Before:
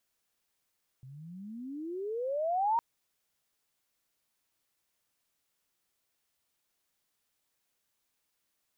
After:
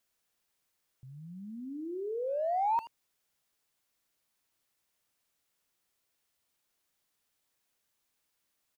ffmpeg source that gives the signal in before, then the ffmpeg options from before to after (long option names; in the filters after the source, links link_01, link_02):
-f lavfi -i "aevalsrc='pow(10,(-24+22*(t/1.76-1))/20)*sin(2*PI*126*1.76/(35*log(2)/12)*(exp(35*log(2)/12*t/1.76)-1))':duration=1.76:sample_rate=44100"
-filter_complex "[0:a]asplit=2[link_01][link_02];[link_02]adelay=80,highpass=300,lowpass=3400,asoftclip=type=hard:threshold=-32.5dB,volume=-12dB[link_03];[link_01][link_03]amix=inputs=2:normalize=0"